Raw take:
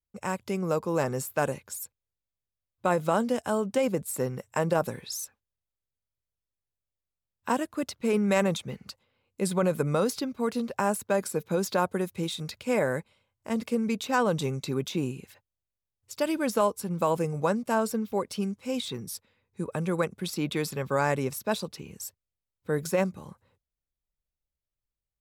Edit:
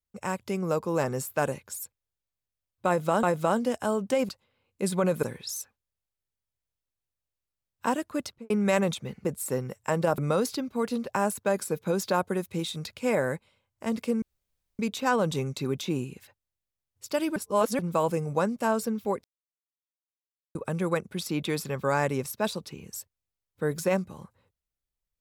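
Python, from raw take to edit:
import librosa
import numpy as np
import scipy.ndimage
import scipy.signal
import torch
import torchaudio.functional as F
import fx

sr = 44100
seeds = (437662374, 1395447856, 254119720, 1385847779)

y = fx.studio_fade_out(x, sr, start_s=7.88, length_s=0.25)
y = fx.edit(y, sr, fx.repeat(start_s=2.87, length_s=0.36, count=2),
    fx.swap(start_s=3.93, length_s=0.93, other_s=8.88, other_length_s=0.94),
    fx.insert_room_tone(at_s=13.86, length_s=0.57),
    fx.reverse_span(start_s=16.43, length_s=0.43),
    fx.silence(start_s=18.31, length_s=1.31), tone=tone)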